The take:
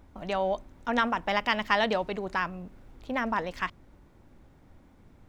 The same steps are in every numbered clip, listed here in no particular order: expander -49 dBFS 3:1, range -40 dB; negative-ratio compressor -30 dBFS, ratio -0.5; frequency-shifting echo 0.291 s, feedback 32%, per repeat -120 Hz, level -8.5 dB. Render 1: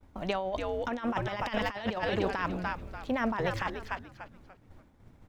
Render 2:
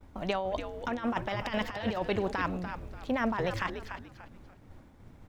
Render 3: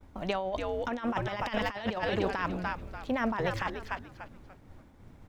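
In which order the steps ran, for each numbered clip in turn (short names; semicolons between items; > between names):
expander > frequency-shifting echo > negative-ratio compressor; negative-ratio compressor > expander > frequency-shifting echo; frequency-shifting echo > negative-ratio compressor > expander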